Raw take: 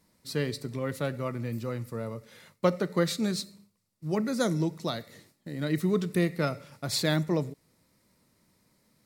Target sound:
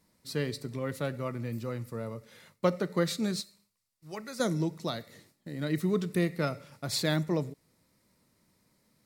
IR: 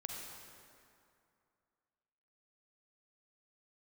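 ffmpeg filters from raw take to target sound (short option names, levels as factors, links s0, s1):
-filter_complex "[0:a]asettb=1/sr,asplit=3[s0][s1][s2];[s0]atrim=end=3.414[s3];[s1]atrim=start=3.41:end=4.4,asetpts=PTS-STARTPTS,afade=t=in:d=0.004:c=qsin,afade=t=out:st=0.986:d=0.004:c=qsin,equalizer=f=200:w=0.38:g=-14.5[s4];[s2]atrim=start=4.396[s5];[s3][s4]acrossfade=d=0.004:c1=hsin:c2=qsin[s6];[s6][s5]acrossfade=d=0.004:c1=qsin:c2=hsin,volume=0.794"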